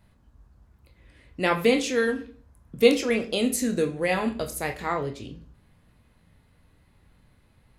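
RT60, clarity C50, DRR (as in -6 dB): 0.40 s, 13.0 dB, 4.0 dB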